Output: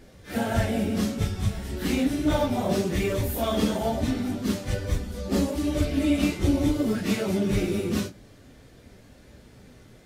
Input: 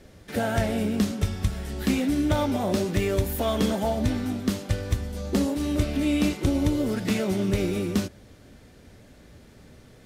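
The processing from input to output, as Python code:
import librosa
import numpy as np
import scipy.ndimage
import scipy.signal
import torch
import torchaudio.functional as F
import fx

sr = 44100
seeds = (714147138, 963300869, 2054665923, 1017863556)

y = fx.phase_scramble(x, sr, seeds[0], window_ms=100)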